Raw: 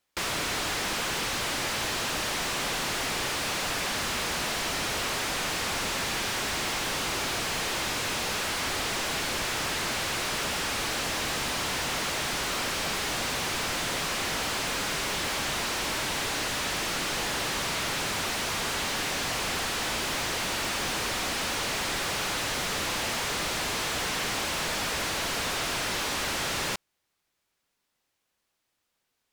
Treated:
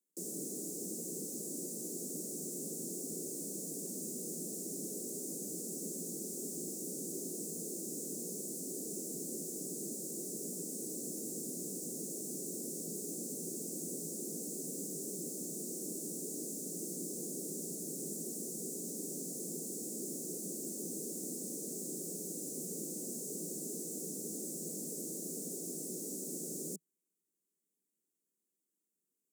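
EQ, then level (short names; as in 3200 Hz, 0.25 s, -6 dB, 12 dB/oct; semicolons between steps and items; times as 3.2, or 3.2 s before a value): steep high-pass 160 Hz 72 dB/oct; elliptic band-stop 400–7400 Hz, stop band 50 dB; -3.5 dB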